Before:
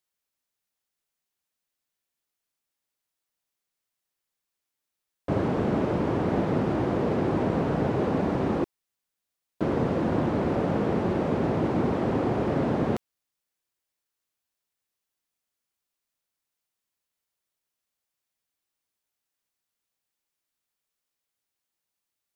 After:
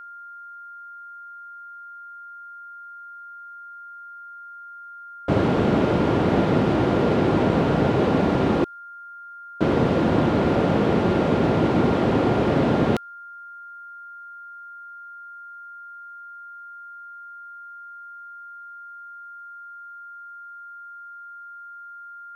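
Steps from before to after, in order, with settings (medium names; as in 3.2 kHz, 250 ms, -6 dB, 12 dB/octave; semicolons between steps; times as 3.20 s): dynamic bell 3.4 kHz, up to +6 dB, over -54 dBFS, Q 1.1; whistle 1.4 kHz -43 dBFS; trim +5.5 dB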